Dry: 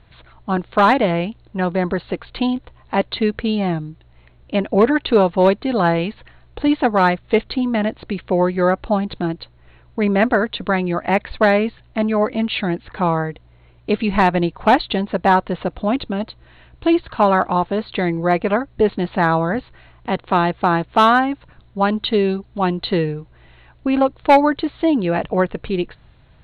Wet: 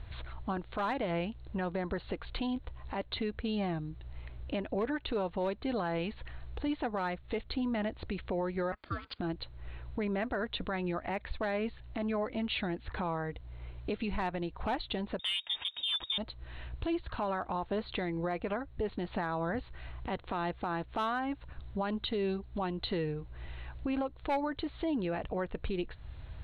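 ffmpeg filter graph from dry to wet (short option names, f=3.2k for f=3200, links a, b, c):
-filter_complex "[0:a]asettb=1/sr,asplit=3[a][b][c];[a]atrim=end=8.724[d];[b]atrim=start=8.72:end=9.19,asetpts=PTS-STARTPTS,afade=t=in:d=0.004:c=qsin,afade=t=out:st=0.466:d=0.004:c=qsin,highpass=f=730:w=0.5412,highpass=f=730:w=1.3066,aeval=exprs='val(0)*sin(2*PI*530*n/s)':c=same[e];[c]atrim=start=9.186[f];[d][e]acrossfade=d=0.004:c1=hsin:c2=qsin[g];[g][f]acrossfade=d=0.004:c1=qsin:c2=hsin,asettb=1/sr,asplit=3[h][i][j];[h]atrim=end=15.194[k];[i]atrim=start=15.19:end=16.18,asetpts=PTS-STARTPTS,afade=t=in:d=0.004:c=qsin,afade=t=out:st=0.986:d=0.004:c=qsin,highpass=46,lowpass=f=3.2k:t=q:w=0.5098,lowpass=f=3.2k:t=q:w=0.6013,lowpass=f=3.2k:t=q:w=0.9,lowpass=f=3.2k:t=q:w=2.563,afreqshift=-3800,acontrast=33[l];[j]atrim=start=16.176[m];[k][l]acrossfade=d=0.004:c1=hsin:c2=qsin[n];[n][m]acrossfade=d=0.004:c1=qsin:c2=hsin,lowshelf=f=110:t=q:w=1.5:g=7.5,acompressor=threshold=-39dB:ratio=2,alimiter=level_in=1.5dB:limit=-24dB:level=0:latency=1:release=95,volume=-1.5dB"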